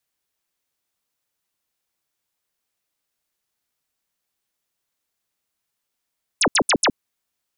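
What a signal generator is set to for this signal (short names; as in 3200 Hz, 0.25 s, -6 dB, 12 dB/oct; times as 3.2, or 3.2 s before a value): burst of laser zaps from 11000 Hz, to 180 Hz, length 0.07 s sine, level -14 dB, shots 4, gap 0.07 s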